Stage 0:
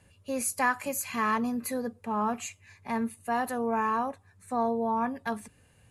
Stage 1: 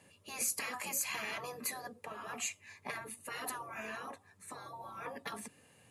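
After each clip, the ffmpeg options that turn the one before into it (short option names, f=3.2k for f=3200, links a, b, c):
-af "highpass=190,afftfilt=real='re*lt(hypot(re,im),0.0708)':imag='im*lt(hypot(re,im),0.0708)':win_size=1024:overlap=0.75,bandreject=f=1.5k:w=11,volume=1.5dB"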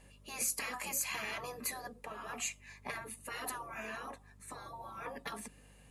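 -af "aeval=exprs='val(0)+0.001*(sin(2*PI*50*n/s)+sin(2*PI*2*50*n/s)/2+sin(2*PI*3*50*n/s)/3+sin(2*PI*4*50*n/s)/4+sin(2*PI*5*50*n/s)/5)':c=same"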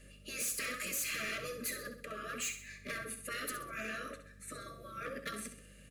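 -af "asoftclip=type=hard:threshold=-37dB,asuperstop=centerf=870:order=20:qfactor=1.8,aecho=1:1:65|130|195|260|325:0.335|0.144|0.0619|0.0266|0.0115,volume=3dB"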